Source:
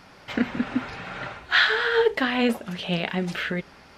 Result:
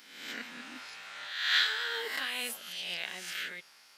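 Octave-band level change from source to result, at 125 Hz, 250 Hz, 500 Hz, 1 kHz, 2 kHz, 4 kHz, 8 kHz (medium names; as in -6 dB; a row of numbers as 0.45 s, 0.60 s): under -30 dB, -26.0 dB, -21.0 dB, -13.0 dB, -9.0 dB, -3.0 dB, +4.5 dB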